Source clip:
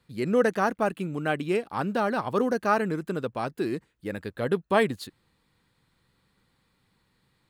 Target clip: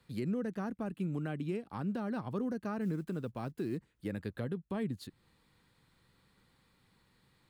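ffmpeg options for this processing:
-filter_complex "[0:a]acrossover=split=270[s0][s1];[s1]acompressor=threshold=0.00562:ratio=2.5[s2];[s0][s2]amix=inputs=2:normalize=0,asettb=1/sr,asplit=3[s3][s4][s5];[s3]atrim=end=2.814[s6];[s4]atrim=start=2.81:end=3.77,asetpts=PTS-STARTPTS,afade=t=in:d=0.004:c=qsin,afade=t=out:st=0.956:d=0.004:c=qsin,acrusher=bits=9:mode=log:mix=0:aa=0.000001[s7];[s5]atrim=start=3.766[s8];[s6][s7]acrossfade=d=0.004:c1=hsin:c2=qsin[s9];[s9][s8]acrossfade=d=0.004:c1=qsin:c2=hsin,alimiter=level_in=1.41:limit=0.0631:level=0:latency=1:release=303,volume=0.708"

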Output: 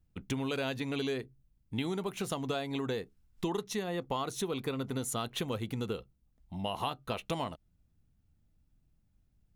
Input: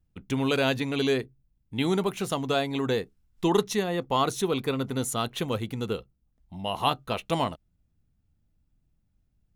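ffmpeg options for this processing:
-af "acompressor=threshold=0.0282:ratio=6"

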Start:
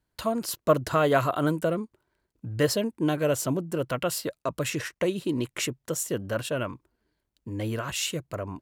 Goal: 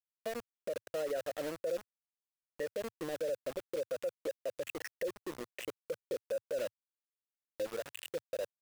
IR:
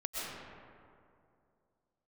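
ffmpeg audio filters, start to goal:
-filter_complex "[0:a]acompressor=threshold=0.0398:ratio=2.5,afftfilt=real='re*gte(hypot(re,im),0.0355)':imag='im*gte(hypot(re,im),0.0355)':win_size=1024:overlap=0.75,adynamicsmooth=sensitivity=5:basefreq=740,asplit=3[s0][s1][s2];[s0]bandpass=f=530:t=q:w=8,volume=1[s3];[s1]bandpass=f=1840:t=q:w=8,volume=0.501[s4];[s2]bandpass=f=2480:t=q:w=8,volume=0.355[s5];[s3][s4][s5]amix=inputs=3:normalize=0,aeval=exprs='val(0)*gte(abs(val(0)),0.00531)':c=same,highshelf=f=7200:g=4.5,alimiter=level_in=3.55:limit=0.0631:level=0:latency=1:release=35,volume=0.282,equalizer=f=110:w=4:g=-6,volume=2.11"

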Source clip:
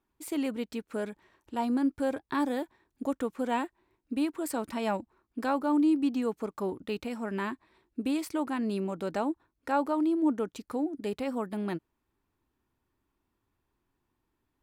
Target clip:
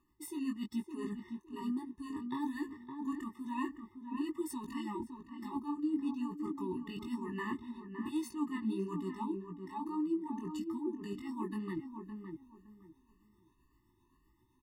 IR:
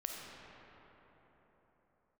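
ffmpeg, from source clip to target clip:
-filter_complex "[0:a]afftfilt=real='re*pow(10,9/40*sin(2*PI*(1.5*log(max(b,1)*sr/1024/100)/log(2)-(1.9)*(pts-256)/sr)))':imag='im*pow(10,9/40*sin(2*PI*(1.5*log(max(b,1)*sr/1024/100)/log(2)-(1.9)*(pts-256)/sr)))':win_size=1024:overlap=0.75,areverse,acompressor=threshold=0.00708:ratio=4,areverse,tremolo=f=7.7:d=0.43,flanger=delay=16:depth=7.1:speed=1.1,asplit=2[s0][s1];[s1]adelay=563,lowpass=f=1300:p=1,volume=0.501,asplit=2[s2][s3];[s3]adelay=563,lowpass=f=1300:p=1,volume=0.25,asplit=2[s4][s5];[s5]adelay=563,lowpass=f=1300:p=1,volume=0.25[s6];[s2][s4][s6]amix=inputs=3:normalize=0[s7];[s0][s7]amix=inputs=2:normalize=0,afftfilt=real='re*eq(mod(floor(b*sr/1024/430),2),0)':imag='im*eq(mod(floor(b*sr/1024/430),2),0)':win_size=1024:overlap=0.75,volume=3.55"

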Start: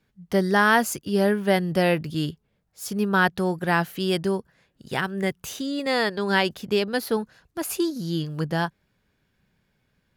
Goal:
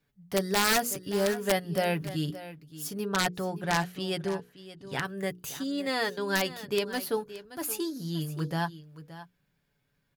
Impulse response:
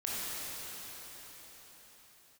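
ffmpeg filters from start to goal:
-filter_complex "[0:a]highshelf=f=11000:g=8.5,bandreject=f=60:t=h:w=6,bandreject=f=120:t=h:w=6,bandreject=f=180:t=h:w=6,bandreject=f=240:t=h:w=6,bandreject=f=300:t=h:w=6,bandreject=f=360:t=h:w=6,bandreject=f=420:t=h:w=6,bandreject=f=480:t=h:w=6,aecho=1:1:7:0.45,aeval=exprs='(mod(3.35*val(0)+1,2)-1)/3.35':c=same,asettb=1/sr,asplit=3[s0][s1][s2];[s0]atrim=end=3.054[s3];[s1]atrim=start=3.05:end=5.05,asetpts=PTS-STARTPTS,afade=t=in:d=0.004:c=qsin,afade=t=out:st=1.996:d=0.004:c=qsin,adynamicsmooth=sensitivity=6:basefreq=6900[s4];[s2]atrim=start=5.046[s5];[s3][s4]acrossfade=d=0.004:c1=hsin:c2=qsin[s6];[s6][s5]acrossfade=d=0.004:c1=qsin:c2=hsin,aecho=1:1:573:0.178,volume=0.473"

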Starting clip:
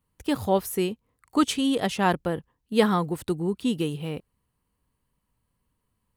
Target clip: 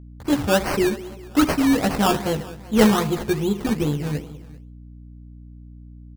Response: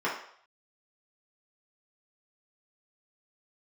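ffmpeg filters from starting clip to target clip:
-filter_complex "[0:a]aecho=1:1:196|392|588|784:0.15|0.0703|0.0331|0.0155,agate=range=0.0708:threshold=0.00224:ratio=16:detection=peak,asplit=2[s0][s1];[1:a]atrim=start_sample=2205,atrim=end_sample=4410,adelay=53[s2];[s1][s2]afir=irnorm=-1:irlink=0,volume=0.0631[s3];[s0][s3]amix=inputs=2:normalize=0,crystalizer=i=1:c=0,asplit=2[s4][s5];[s5]adelay=14,volume=0.794[s6];[s4][s6]amix=inputs=2:normalize=0,acrusher=samples=17:mix=1:aa=0.000001:lfo=1:lforange=10.2:lforate=2.5,lowshelf=f=250:g=6.5,aeval=exprs='val(0)+0.01*(sin(2*PI*60*n/s)+sin(2*PI*2*60*n/s)/2+sin(2*PI*3*60*n/s)/3+sin(2*PI*4*60*n/s)/4+sin(2*PI*5*60*n/s)/5)':c=same"

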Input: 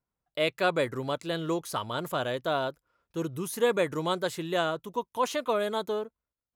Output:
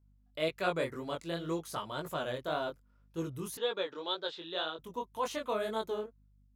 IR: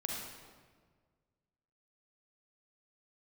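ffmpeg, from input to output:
-filter_complex "[0:a]aeval=exprs='val(0)+0.001*(sin(2*PI*50*n/s)+sin(2*PI*2*50*n/s)/2+sin(2*PI*3*50*n/s)/3+sin(2*PI*4*50*n/s)/4+sin(2*PI*5*50*n/s)/5)':c=same,flanger=delay=18:depth=6.1:speed=1.9,asettb=1/sr,asplit=3[s0][s1][s2];[s0]atrim=end=3.574[s3];[s1]atrim=start=3.57:end=4.79,asetpts=PTS-STARTPTS,afade=t=in:d=0.004:c=qsin,afade=t=out:st=1.216:d=0.004:c=qsin,highpass=430,equalizer=f=670:t=q:w=4:g=-5,equalizer=f=1100:t=q:w=4:g=-4,equalizer=f=2100:t=q:w=4:g=-9,equalizer=f=3600:t=q:w=4:g=10,lowpass=f=4500:w=0.5412,lowpass=f=4500:w=1.3066[s4];[s2]atrim=start=4.786[s5];[s3][s4]acrossfade=d=0.004:c1=hsin:c2=qsin[s6];[s6][s5]acrossfade=d=0.004:c1=qsin:c2=hsin,volume=0.708"

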